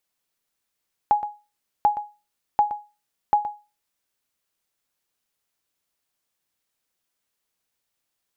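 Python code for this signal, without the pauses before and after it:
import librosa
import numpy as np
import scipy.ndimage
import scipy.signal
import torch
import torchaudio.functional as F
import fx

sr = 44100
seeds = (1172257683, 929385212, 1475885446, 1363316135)

y = fx.sonar_ping(sr, hz=833.0, decay_s=0.29, every_s=0.74, pings=4, echo_s=0.12, echo_db=-13.5, level_db=-10.0)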